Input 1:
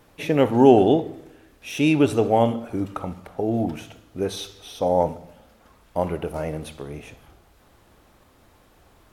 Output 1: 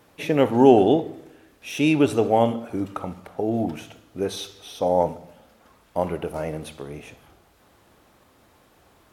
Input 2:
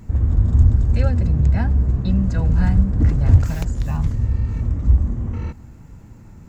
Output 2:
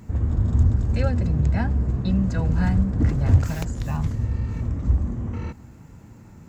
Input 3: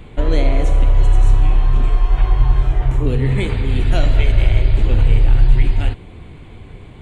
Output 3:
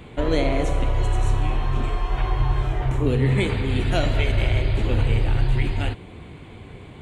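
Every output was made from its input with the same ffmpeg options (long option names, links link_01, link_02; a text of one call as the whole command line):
ffmpeg -i in.wav -af "highpass=frequency=110:poles=1" out.wav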